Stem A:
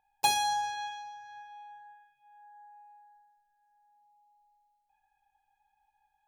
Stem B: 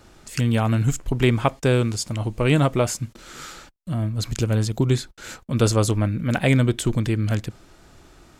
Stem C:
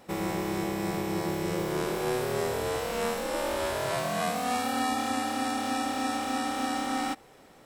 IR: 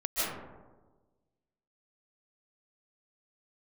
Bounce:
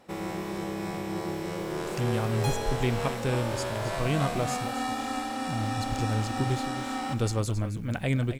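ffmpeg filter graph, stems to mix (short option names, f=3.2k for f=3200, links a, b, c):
-filter_complex "[0:a]adelay=2200,volume=-9.5dB[a];[1:a]acrusher=bits=9:dc=4:mix=0:aa=0.000001,lowshelf=f=66:g=10,adelay=1600,volume=-10.5dB,asplit=2[b][c];[c]volume=-12dB[d];[2:a]highshelf=f=11k:g=-8.5,volume=-3dB,asplit=2[e][f];[f]volume=-11dB[g];[d][g]amix=inputs=2:normalize=0,aecho=0:1:269:1[h];[a][b][e][h]amix=inputs=4:normalize=0"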